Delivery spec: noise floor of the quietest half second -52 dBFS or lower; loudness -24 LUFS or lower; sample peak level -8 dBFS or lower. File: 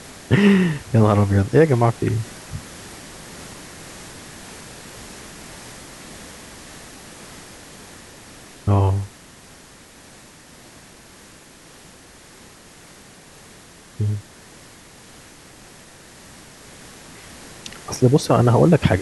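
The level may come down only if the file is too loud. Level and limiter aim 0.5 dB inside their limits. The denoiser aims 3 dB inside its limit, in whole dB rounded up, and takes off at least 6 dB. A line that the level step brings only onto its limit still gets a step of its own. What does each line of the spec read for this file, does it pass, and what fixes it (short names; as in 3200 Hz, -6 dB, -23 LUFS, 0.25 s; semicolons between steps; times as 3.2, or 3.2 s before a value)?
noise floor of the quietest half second -46 dBFS: fail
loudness -18.0 LUFS: fail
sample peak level -2.5 dBFS: fail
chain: gain -6.5 dB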